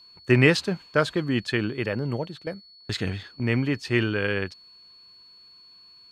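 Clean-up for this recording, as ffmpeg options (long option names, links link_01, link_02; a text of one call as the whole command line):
ffmpeg -i in.wav -af "bandreject=frequency=4400:width=30" out.wav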